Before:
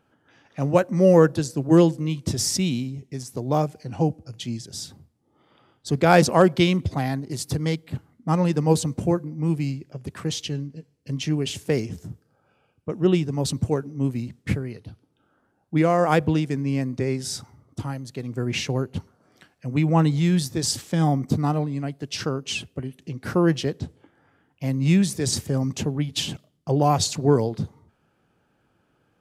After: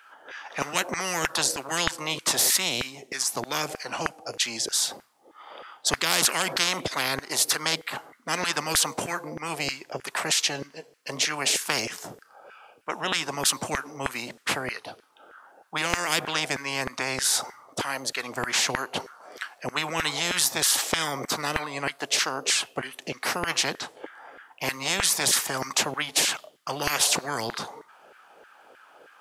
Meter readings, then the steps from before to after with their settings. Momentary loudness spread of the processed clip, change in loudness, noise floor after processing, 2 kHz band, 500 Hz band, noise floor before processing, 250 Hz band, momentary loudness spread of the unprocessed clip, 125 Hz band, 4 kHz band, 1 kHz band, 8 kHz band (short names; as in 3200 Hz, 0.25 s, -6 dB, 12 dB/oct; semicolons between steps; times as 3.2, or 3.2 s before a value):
14 LU, -2.5 dB, -58 dBFS, +6.5 dB, -10.0 dB, -68 dBFS, -14.5 dB, 16 LU, -18.0 dB, +6.5 dB, -2.5 dB, +8.0 dB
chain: LFO high-pass saw down 3.2 Hz 440–1700 Hz; spectral compressor 10:1; gain -2.5 dB